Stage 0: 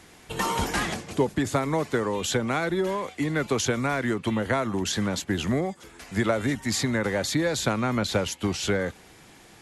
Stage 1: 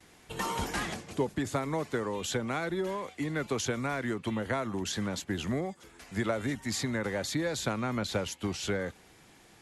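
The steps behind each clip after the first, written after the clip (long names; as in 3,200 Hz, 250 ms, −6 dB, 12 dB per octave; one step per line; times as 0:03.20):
noise gate with hold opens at −43 dBFS
level −6.5 dB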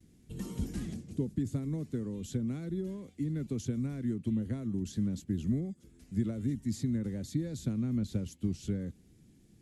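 drawn EQ curve 240 Hz 0 dB, 900 Hz −29 dB, 8,100 Hz −13 dB
level +3 dB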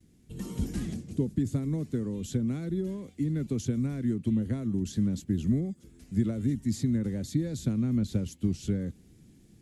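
automatic gain control gain up to 4.5 dB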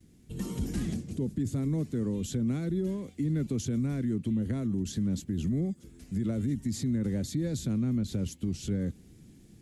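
brickwall limiter −25 dBFS, peak gain reduction 10.5 dB
level +2.5 dB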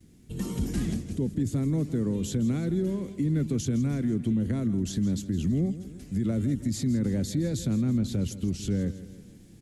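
repeating echo 163 ms, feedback 50%, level −14.5 dB
level +3 dB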